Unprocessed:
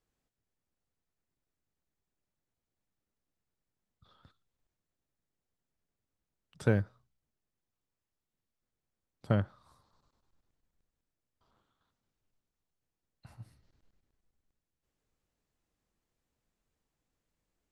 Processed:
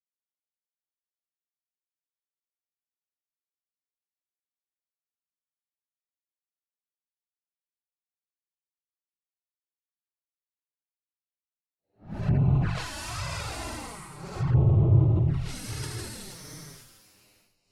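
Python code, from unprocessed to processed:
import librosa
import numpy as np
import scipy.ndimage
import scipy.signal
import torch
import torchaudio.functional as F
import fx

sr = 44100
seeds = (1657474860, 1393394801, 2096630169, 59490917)

y = fx.law_mismatch(x, sr, coded='mu')
y = fx.high_shelf(y, sr, hz=4900.0, db=10.5)
y = fx.rev_fdn(y, sr, rt60_s=1.7, lf_ratio=1.45, hf_ratio=0.45, size_ms=31.0, drr_db=18.0)
y = fx.fuzz(y, sr, gain_db=46.0, gate_db=-48.0)
y = fx.env_lowpass(y, sr, base_hz=410.0, full_db=-20.5)
y = fx.tube_stage(y, sr, drive_db=18.0, bias=0.3)
y = fx.peak_eq(y, sr, hz=140.0, db=4.0, octaves=0.65)
y = fx.paulstretch(y, sr, seeds[0], factor=16.0, window_s=0.05, from_s=12.48)
y = fx.env_flanger(y, sr, rest_ms=10.4, full_db=-17.5)
y = fx.env_lowpass_down(y, sr, base_hz=1000.0, full_db=-18.0)
y = fx.sustainer(y, sr, db_per_s=50.0)
y = y * 10.0 ** (-1.5 / 20.0)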